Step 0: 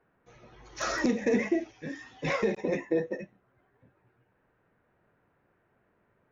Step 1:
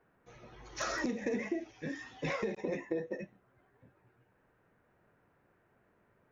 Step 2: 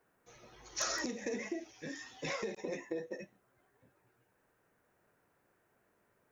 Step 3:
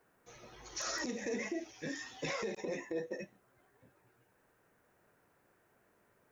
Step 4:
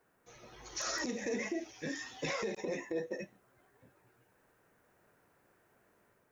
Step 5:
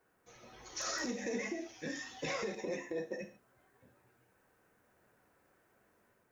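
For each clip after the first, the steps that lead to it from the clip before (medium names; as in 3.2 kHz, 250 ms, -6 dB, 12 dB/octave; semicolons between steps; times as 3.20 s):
compression 3:1, threshold -34 dBFS, peak gain reduction 10 dB
tone controls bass -5 dB, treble +12 dB; trim -3 dB
peak limiter -31.5 dBFS, peak gain reduction 10.5 dB; trim +3 dB
level rider gain up to 3 dB; trim -1.5 dB
gated-style reverb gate 160 ms falling, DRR 6.5 dB; trim -2 dB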